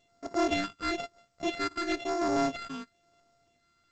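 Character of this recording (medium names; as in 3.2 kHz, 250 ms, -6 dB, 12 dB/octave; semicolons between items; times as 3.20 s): a buzz of ramps at a fixed pitch in blocks of 64 samples; phasing stages 6, 1 Hz, lowest notch 610–4000 Hz; aliases and images of a low sample rate 6.2 kHz, jitter 0%; G.722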